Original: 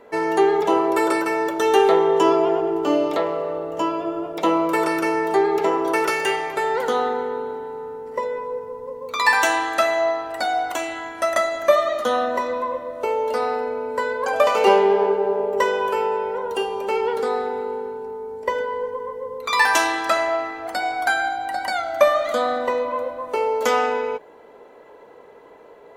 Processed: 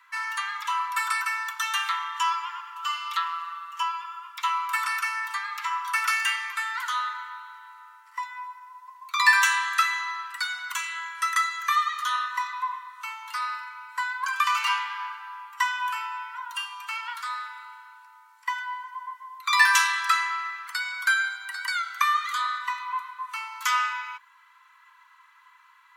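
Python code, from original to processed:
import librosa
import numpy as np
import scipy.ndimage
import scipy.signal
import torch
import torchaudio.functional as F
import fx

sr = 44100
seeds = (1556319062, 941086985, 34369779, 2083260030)

y = scipy.signal.sosfilt(scipy.signal.butter(16, 1000.0, 'highpass', fs=sr, output='sos'), x)
y = fx.comb(y, sr, ms=5.3, depth=0.79, at=(2.75, 3.83))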